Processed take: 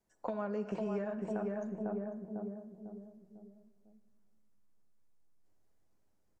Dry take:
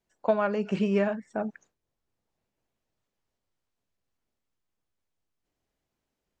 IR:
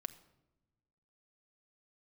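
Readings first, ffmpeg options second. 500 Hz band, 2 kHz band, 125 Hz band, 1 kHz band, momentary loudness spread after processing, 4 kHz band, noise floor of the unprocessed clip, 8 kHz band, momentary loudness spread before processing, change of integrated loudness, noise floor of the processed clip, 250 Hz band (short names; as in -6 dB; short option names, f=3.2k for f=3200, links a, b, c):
-8.5 dB, -13.5 dB, -7.5 dB, -10.0 dB, 19 LU, under -15 dB, -85 dBFS, n/a, 9 LU, -11.0 dB, -72 dBFS, -7.0 dB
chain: -filter_complex "[0:a]asplit=2[a][b];[b]adelay=499,lowpass=f=820:p=1,volume=-5.5dB,asplit=2[c][d];[d]adelay=499,lowpass=f=820:p=1,volume=0.45,asplit=2[e][f];[f]adelay=499,lowpass=f=820:p=1,volume=0.45,asplit=2[g][h];[h]adelay=499,lowpass=f=820:p=1,volume=0.45,asplit=2[i][j];[j]adelay=499,lowpass=f=820:p=1,volume=0.45[k];[a][c][e][g][i][k]amix=inputs=6:normalize=0,acrossover=split=360|1900[l][m][n];[l]acompressor=threshold=-40dB:ratio=4[o];[m]acompressor=threshold=-37dB:ratio=4[p];[n]acompressor=threshold=-53dB:ratio=4[q];[o][p][q]amix=inputs=3:normalize=0,equalizer=f=3k:t=o:w=1.2:g=-8.5,acompressor=threshold=-36dB:ratio=2.5[r];[1:a]atrim=start_sample=2205,asetrate=25578,aresample=44100[s];[r][s]afir=irnorm=-1:irlink=0,volume=1dB"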